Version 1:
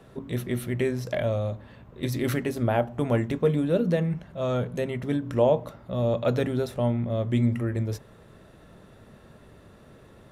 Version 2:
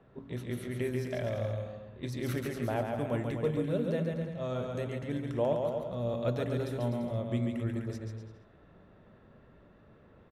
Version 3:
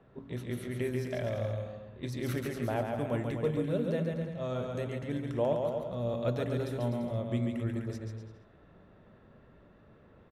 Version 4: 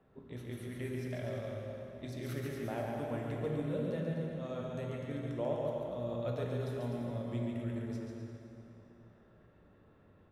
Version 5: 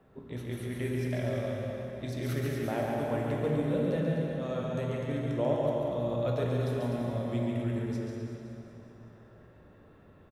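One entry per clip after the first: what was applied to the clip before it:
bouncing-ball echo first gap 0.14 s, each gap 0.8×, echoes 5; low-pass opened by the level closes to 2300 Hz, open at -21 dBFS; gain -9 dB
nothing audible
plate-style reverb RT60 3.3 s, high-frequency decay 0.75×, DRR 1 dB; gain -7.5 dB
feedback echo 0.188 s, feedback 59%, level -10 dB; gain +6 dB

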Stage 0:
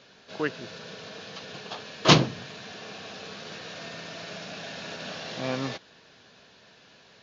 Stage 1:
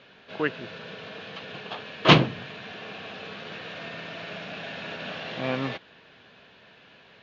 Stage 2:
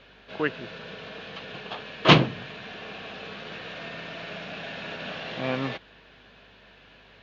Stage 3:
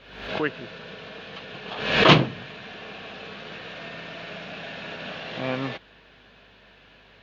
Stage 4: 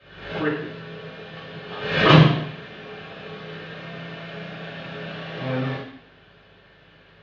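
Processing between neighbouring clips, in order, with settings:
resonant high shelf 4100 Hz -11.5 dB, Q 1.5; gain +1.5 dB
hum 50 Hz, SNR 33 dB
backwards sustainer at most 68 dB/s
reverb RT60 0.70 s, pre-delay 3 ms, DRR -7 dB; gain -17.5 dB

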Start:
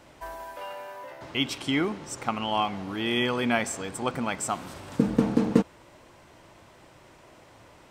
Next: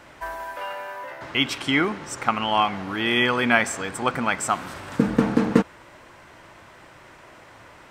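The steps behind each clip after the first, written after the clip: bell 1600 Hz +8 dB 1.4 oct; gain +2.5 dB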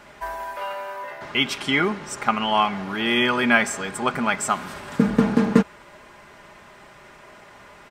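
comb 4.9 ms, depth 50%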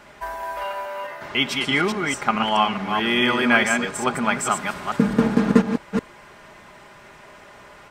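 reverse delay 0.214 s, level -4.5 dB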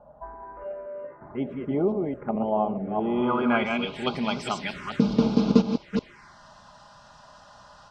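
low-pass sweep 580 Hz -> 5100 Hz, 2.89–4.22; envelope phaser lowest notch 340 Hz, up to 1800 Hz, full sweep at -18 dBFS; gain -2.5 dB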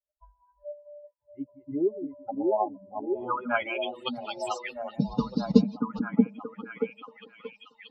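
per-bin expansion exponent 3; on a send: delay with a stepping band-pass 0.631 s, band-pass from 290 Hz, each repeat 0.7 oct, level -0.5 dB; on the sum: gain +2.5 dB

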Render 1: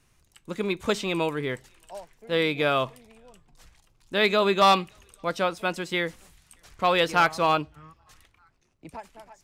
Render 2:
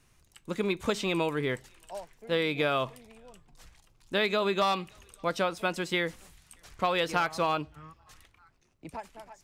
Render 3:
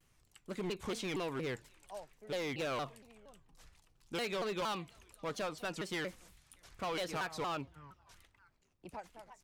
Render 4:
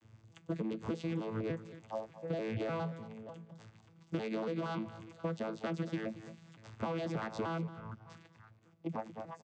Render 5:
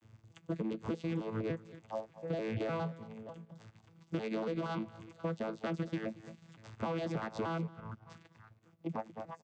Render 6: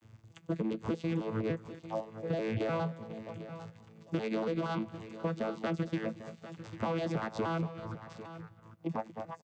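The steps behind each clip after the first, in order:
compressor 10:1, threshold -23 dBFS, peak gain reduction 9.5 dB
hard clip -27 dBFS, distortion -9 dB; shaped vibrato saw down 4.3 Hz, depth 250 cents; gain -6.5 dB
arpeggiated vocoder bare fifth, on A2, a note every 0.298 s; compressor 10:1, threshold -46 dBFS, peak gain reduction 14.5 dB; echo 0.23 s -15 dB; gain +12.5 dB
transient shaper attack -1 dB, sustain -6 dB; gain +1 dB
echo 0.798 s -13.5 dB; gain +3 dB

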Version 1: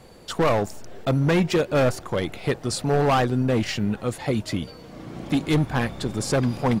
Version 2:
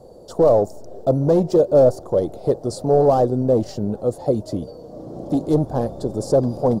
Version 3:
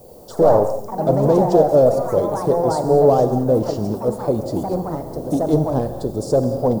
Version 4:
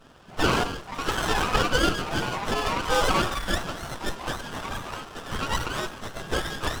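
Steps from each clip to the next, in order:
EQ curve 220 Hz 0 dB, 590 Hz +10 dB, 2300 Hz -27 dB, 4700 Hz -6 dB
added noise violet -52 dBFS; non-linear reverb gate 0.26 s flat, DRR 9 dB; echoes that change speed 82 ms, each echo +3 st, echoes 3, each echo -6 dB
spectrum mirrored in octaves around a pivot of 940 Hz; BPF 380–6100 Hz; running maximum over 17 samples

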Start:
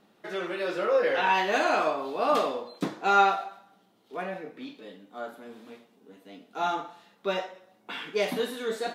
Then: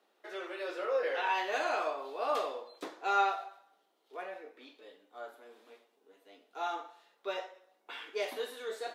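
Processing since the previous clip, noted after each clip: HPF 360 Hz 24 dB/oct; gain -7.5 dB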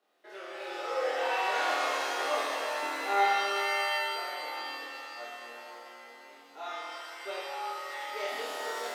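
flutter echo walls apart 4.3 m, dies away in 1 s; shimmer reverb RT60 2.6 s, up +7 st, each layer -2 dB, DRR 0.5 dB; gain -5.5 dB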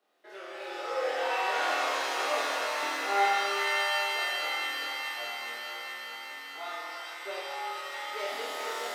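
thin delay 0.422 s, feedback 75%, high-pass 1500 Hz, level -3.5 dB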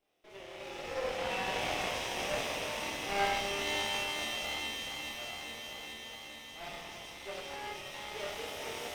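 minimum comb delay 0.33 ms; gain -3.5 dB

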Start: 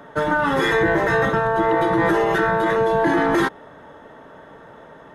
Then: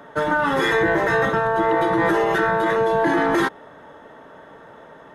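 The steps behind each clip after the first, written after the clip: low shelf 180 Hz -5 dB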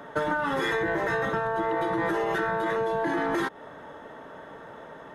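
compressor 6:1, threshold -24 dBFS, peak gain reduction 9 dB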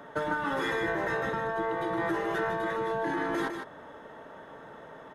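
echo 0.154 s -6.5 dB; gain -4 dB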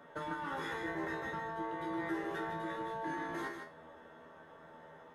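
resonator 81 Hz, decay 0.32 s, harmonics all, mix 90%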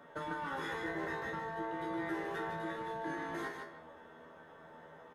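speakerphone echo 0.15 s, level -8 dB

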